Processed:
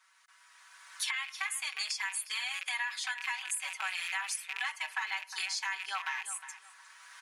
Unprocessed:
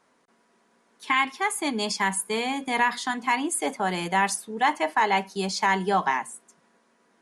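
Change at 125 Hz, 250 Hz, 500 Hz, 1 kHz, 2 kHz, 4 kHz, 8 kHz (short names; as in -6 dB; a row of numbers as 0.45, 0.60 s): under -40 dB, under -40 dB, under -30 dB, -17.5 dB, -6.5 dB, -4.0 dB, -5.0 dB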